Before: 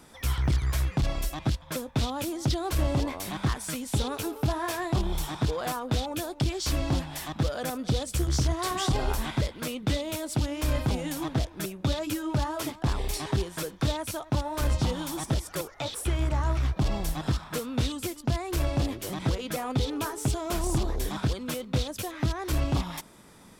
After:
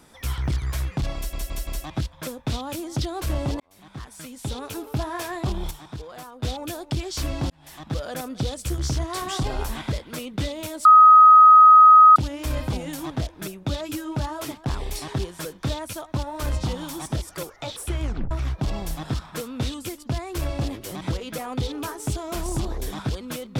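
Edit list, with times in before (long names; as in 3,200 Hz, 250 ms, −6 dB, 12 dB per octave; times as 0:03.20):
0:01.16: stutter 0.17 s, 4 plays
0:03.09–0:04.41: fade in
0:05.20–0:05.92: clip gain −9 dB
0:06.99–0:07.51: fade in
0:10.34: insert tone 1,260 Hz −7 dBFS 1.31 s
0:16.21: tape stop 0.28 s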